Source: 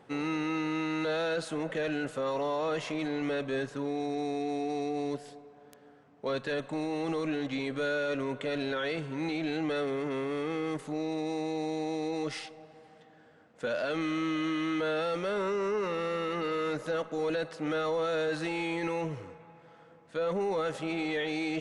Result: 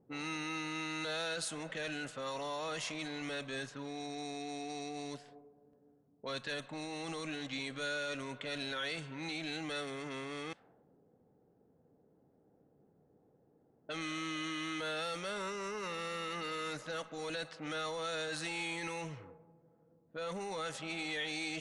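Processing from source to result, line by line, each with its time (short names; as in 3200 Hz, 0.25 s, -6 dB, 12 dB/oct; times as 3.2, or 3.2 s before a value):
10.53–13.89 room tone
whole clip: pre-emphasis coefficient 0.8; low-pass opened by the level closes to 320 Hz, open at -40.5 dBFS; dynamic EQ 400 Hz, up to -6 dB, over -58 dBFS, Q 1.3; gain +7 dB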